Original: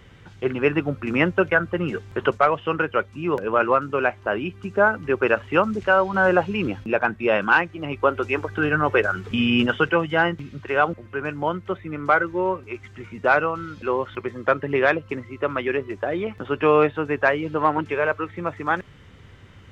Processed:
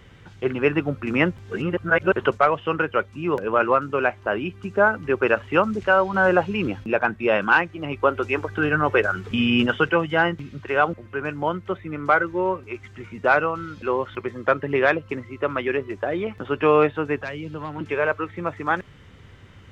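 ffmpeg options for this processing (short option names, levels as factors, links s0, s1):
-filter_complex "[0:a]asettb=1/sr,asplit=3[s0][s1][s2];[s0]atrim=end=17.214[s3];[s1]atrim=start=17.21:end=17.81,asetpts=PTS-STARTPTS,afade=t=in:d=0.004:c=qsin,afade=t=out:st=0.596:d=0.004:c=qsin,acrossover=split=210|3000[s4][s5][s6];[s5]acompressor=threshold=0.0126:ratio=2.5:attack=3.2:release=140:knee=2.83:detection=peak[s7];[s4][s7][s6]amix=inputs=3:normalize=0[s8];[s2]atrim=start=17.806[s9];[s3][s8]acrossfade=d=0.004:c1=hsin:c2=qsin[s10];[s10][s9]acrossfade=d=0.004:c1=qsin:c2=hsin,asplit=3[s11][s12][s13];[s11]atrim=end=1.372[s14];[s12]atrim=start=1.368:end=2.132,asetpts=PTS-STARTPTS,areverse[s15];[s13]atrim=start=2.128[s16];[s14][s15]acrossfade=d=0.004:c1=hsin:c2=hsin[s17];[s17][s16]acrossfade=d=0.004:c1=hsin:c2=hsin"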